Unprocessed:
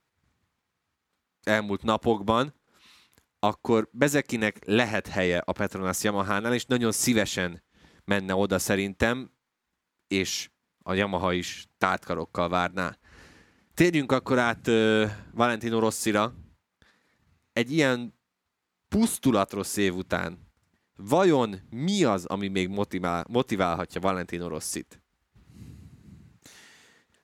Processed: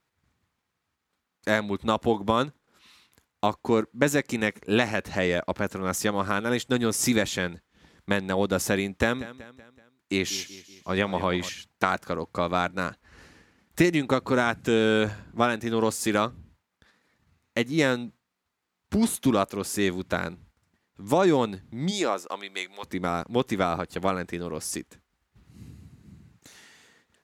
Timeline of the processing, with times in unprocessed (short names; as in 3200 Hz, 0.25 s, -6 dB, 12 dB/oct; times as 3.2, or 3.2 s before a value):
8.97–11.49 feedback echo 0.189 s, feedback 49%, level -16 dB
21.9–22.83 HPF 340 Hz -> 1100 Hz